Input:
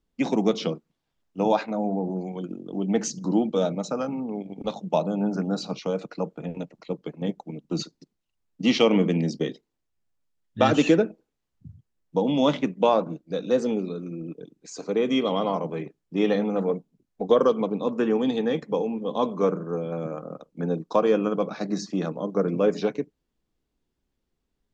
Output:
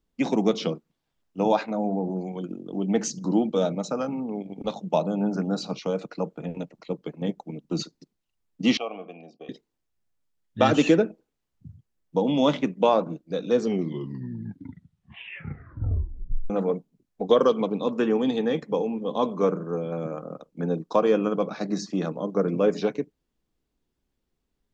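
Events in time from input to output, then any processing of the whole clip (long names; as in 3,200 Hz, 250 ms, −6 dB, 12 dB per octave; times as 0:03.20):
0:08.77–0:09.49: formant filter a
0:13.43: tape stop 3.07 s
0:17.28–0:18.06: parametric band 3,700 Hz +4.5 dB 1.4 octaves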